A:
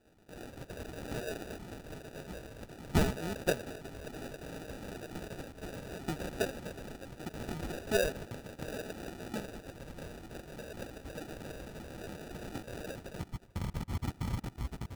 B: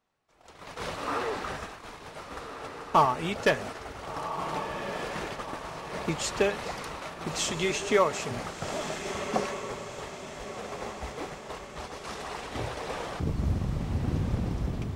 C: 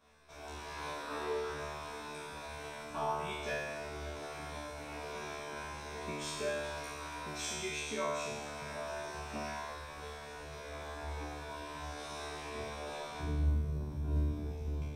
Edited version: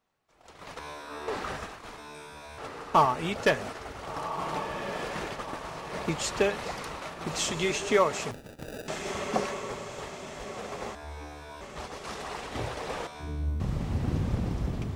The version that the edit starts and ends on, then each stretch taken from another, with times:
B
0.79–1.28 from C
1.98–2.58 from C
8.31–8.88 from A
10.95–11.61 from C
13.07–13.6 from C

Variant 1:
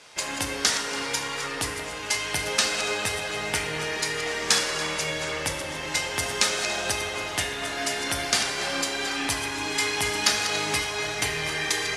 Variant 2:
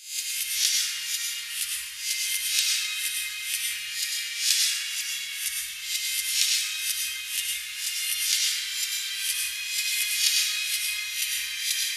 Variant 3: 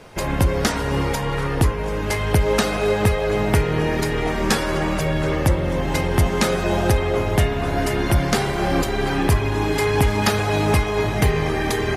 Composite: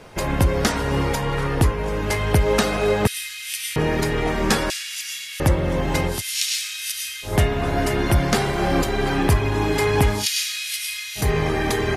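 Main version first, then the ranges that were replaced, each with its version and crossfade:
3
3.07–3.76 from 2
4.7–5.4 from 2
6.14–7.3 from 2, crossfade 0.16 s
10.19–11.23 from 2, crossfade 0.16 s
not used: 1

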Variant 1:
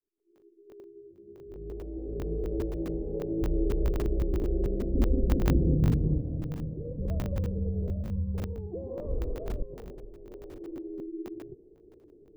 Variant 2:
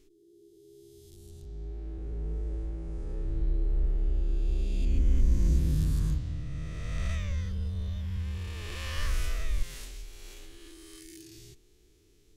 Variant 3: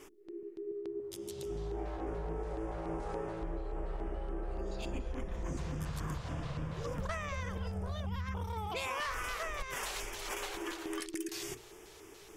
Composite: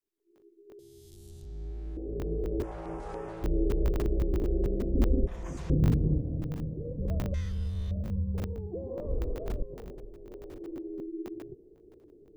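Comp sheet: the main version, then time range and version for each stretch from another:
1
0.79–1.97 from 2
2.63–3.44 from 3
5.27–5.7 from 3
7.34–7.91 from 2

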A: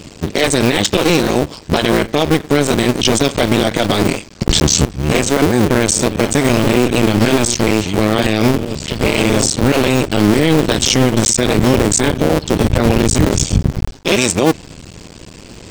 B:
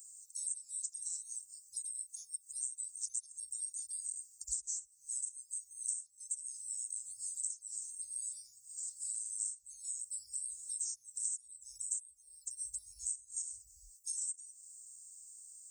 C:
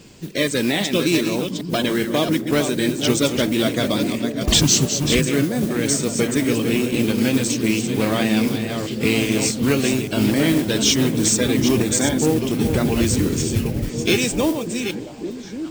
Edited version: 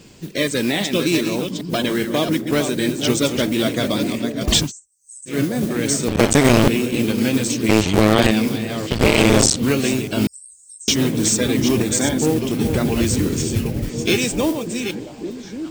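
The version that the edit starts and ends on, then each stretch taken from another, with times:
C
4.64–5.33 from B, crossfade 0.16 s
6.08–6.68 from A
7.69–8.31 from A
8.91–9.56 from A
10.27–10.88 from B

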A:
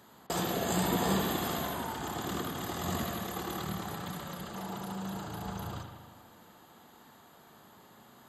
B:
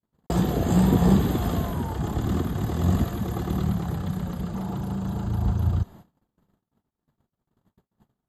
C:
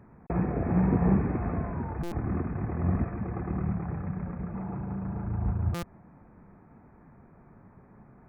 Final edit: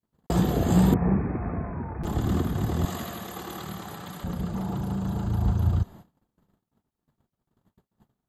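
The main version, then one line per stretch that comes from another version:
B
0.94–2.05 from C
2.85–4.24 from A

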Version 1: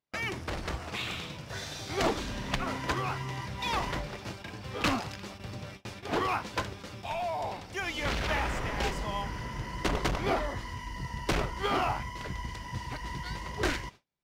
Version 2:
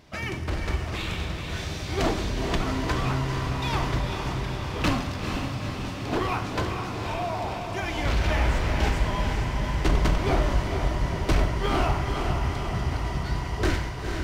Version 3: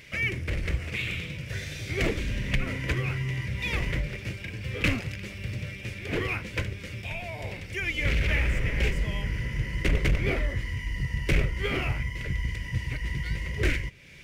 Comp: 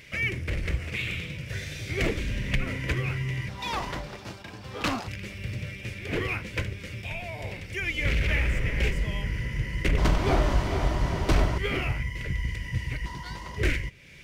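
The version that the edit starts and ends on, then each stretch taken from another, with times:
3
3.49–5.08 from 1
9.98–11.58 from 2
13.06–13.57 from 1

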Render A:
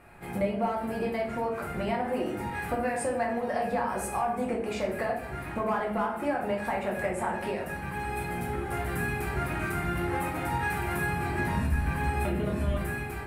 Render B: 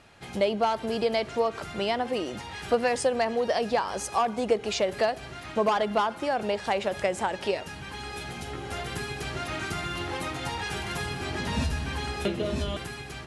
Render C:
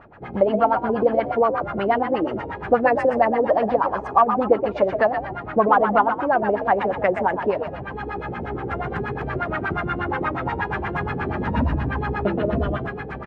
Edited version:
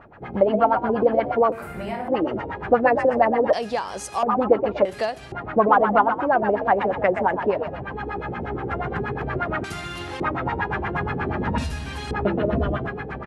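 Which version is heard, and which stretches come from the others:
C
1.52–2.08 from A
3.53–4.23 from B
4.85–5.32 from B
9.64–10.2 from B
11.58–12.11 from B

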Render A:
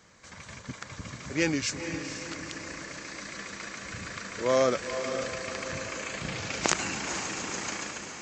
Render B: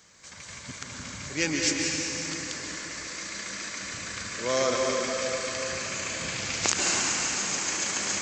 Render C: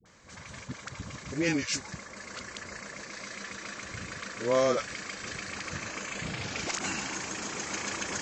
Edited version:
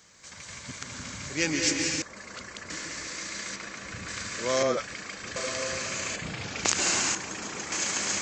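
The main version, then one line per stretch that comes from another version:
B
2.02–2.7 from C
3.56–4.08 from A
4.63–5.36 from C
6.16–6.65 from C
7.15–7.72 from C

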